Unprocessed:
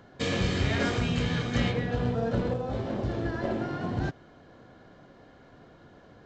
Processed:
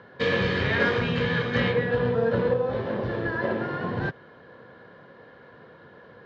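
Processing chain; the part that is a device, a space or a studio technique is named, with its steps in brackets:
guitar cabinet (loudspeaker in its box 110–4,300 Hz, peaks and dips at 290 Hz −6 dB, 490 Hz +8 dB, 710 Hz −5 dB, 1,000 Hz +6 dB, 1,700 Hz +8 dB)
level +2.5 dB

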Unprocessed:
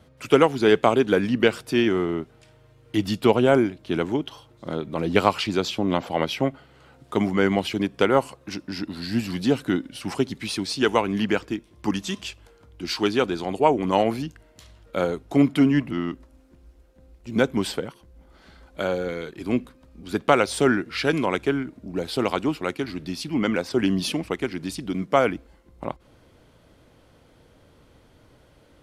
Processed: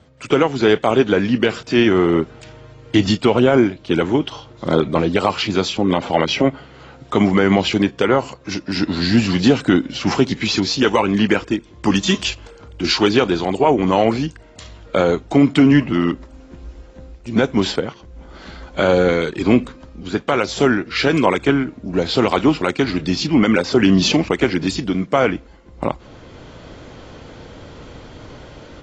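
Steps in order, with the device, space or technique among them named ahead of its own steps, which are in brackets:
low-bitrate web radio (automatic gain control gain up to 13 dB; brickwall limiter −7 dBFS, peak gain reduction 6.5 dB; level +3.5 dB; AAC 24 kbit/s 24,000 Hz)

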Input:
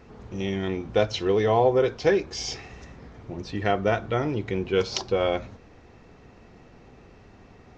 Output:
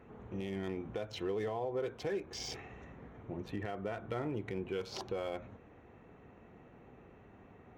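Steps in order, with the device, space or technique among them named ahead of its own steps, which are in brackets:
adaptive Wiener filter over 9 samples
podcast mastering chain (high-pass filter 95 Hz 6 dB per octave; de-essing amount 80%; downward compressor 2.5 to 1, threshold −30 dBFS, peak gain reduction 10 dB; brickwall limiter −23 dBFS, peak gain reduction 7 dB; level −4.5 dB; MP3 96 kbit/s 48,000 Hz)

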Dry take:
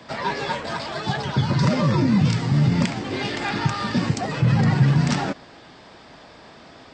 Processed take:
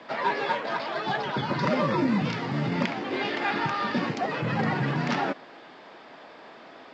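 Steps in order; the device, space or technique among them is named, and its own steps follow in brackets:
telephone (band-pass filter 290–3,100 Hz; A-law companding 128 kbit/s 16,000 Hz)

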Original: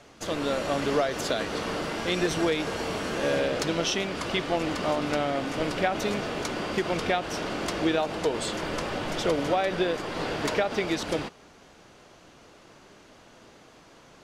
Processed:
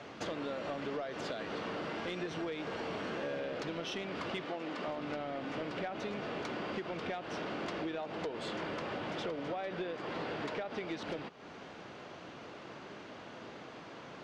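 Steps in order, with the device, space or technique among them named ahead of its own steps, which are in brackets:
AM radio (band-pass filter 110–3,600 Hz; downward compressor 6 to 1, threshold −41 dBFS, peak gain reduction 19 dB; soft clipping −33.5 dBFS, distortion −21 dB)
0:04.45–0:04.88: high-pass filter 200 Hz 12 dB per octave
level +5 dB

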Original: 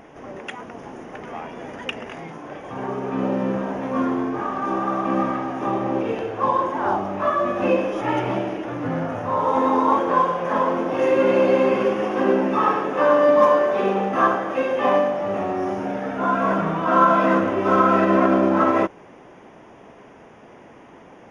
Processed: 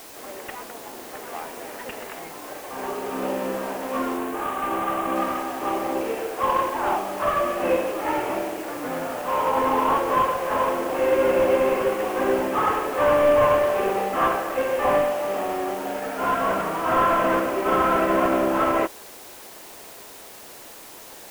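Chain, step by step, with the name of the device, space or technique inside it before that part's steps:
army field radio (band-pass filter 350–3,300 Hz; variable-slope delta modulation 16 kbit/s; white noise bed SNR 20 dB)
0:04.17–0:05.16: parametric band 5,100 Hz −5.5 dB 0.68 octaves

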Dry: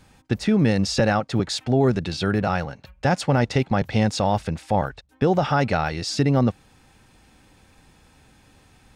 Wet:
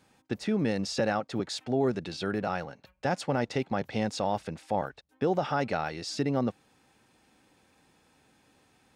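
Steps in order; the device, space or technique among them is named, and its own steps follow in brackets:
filter by subtraction (in parallel: low-pass filter 340 Hz 12 dB per octave + polarity inversion)
on the sum: level −8.5 dB

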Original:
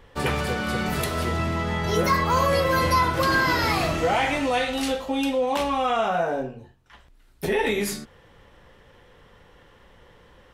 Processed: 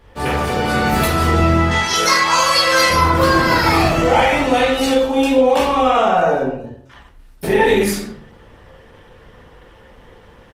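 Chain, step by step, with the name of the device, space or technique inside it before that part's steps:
0:01.71–0:02.90: meter weighting curve ITU-R 468
speakerphone in a meeting room (convolution reverb RT60 0.60 s, pre-delay 12 ms, DRR −3.5 dB; far-end echo of a speakerphone 110 ms, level −21 dB; automatic gain control gain up to 3.5 dB; level +1 dB; Opus 20 kbit/s 48,000 Hz)

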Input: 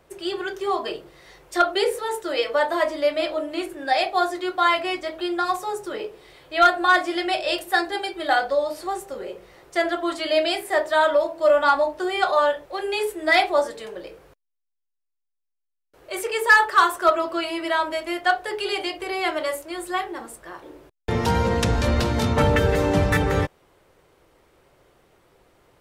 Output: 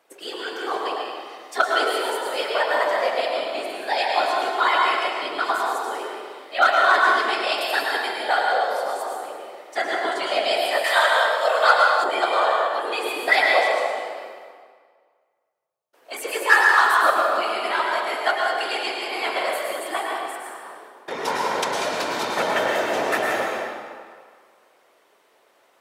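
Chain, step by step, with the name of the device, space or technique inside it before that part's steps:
whispering ghost (random phases in short frames; high-pass filter 550 Hz 12 dB per octave; convolution reverb RT60 1.8 s, pre-delay 98 ms, DRR −1.5 dB)
0:10.84–0:12.04: tilt shelving filter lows −8 dB, about 810 Hz
level −1.5 dB

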